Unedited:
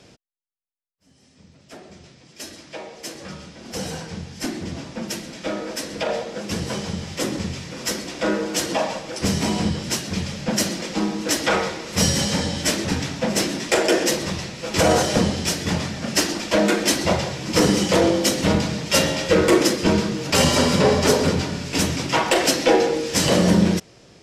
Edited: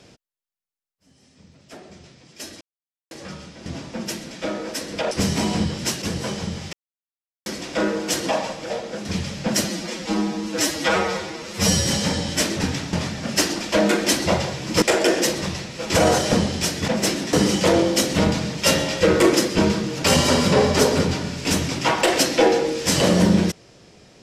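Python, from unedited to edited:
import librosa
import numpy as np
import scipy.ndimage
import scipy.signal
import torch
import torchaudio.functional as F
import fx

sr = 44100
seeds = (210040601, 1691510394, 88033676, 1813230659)

y = fx.edit(x, sr, fx.silence(start_s=2.61, length_s=0.5),
    fx.cut(start_s=3.66, length_s=1.02),
    fx.swap(start_s=6.13, length_s=0.35, other_s=9.16, other_length_s=0.91),
    fx.silence(start_s=7.19, length_s=0.73),
    fx.stretch_span(start_s=10.66, length_s=1.48, factor=1.5),
    fx.swap(start_s=13.21, length_s=0.45, other_s=15.72, other_length_s=1.89), tone=tone)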